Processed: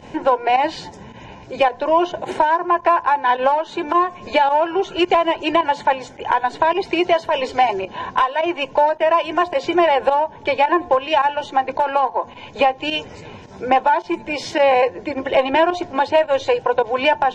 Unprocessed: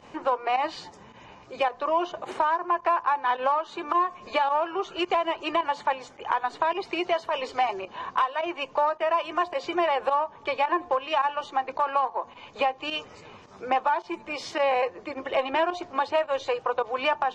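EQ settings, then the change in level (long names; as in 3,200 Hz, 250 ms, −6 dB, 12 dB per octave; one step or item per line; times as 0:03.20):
Butterworth band-reject 1,200 Hz, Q 4.4
low-shelf EQ 300 Hz +7.5 dB
notch filter 4,600 Hz, Q 21
+8.0 dB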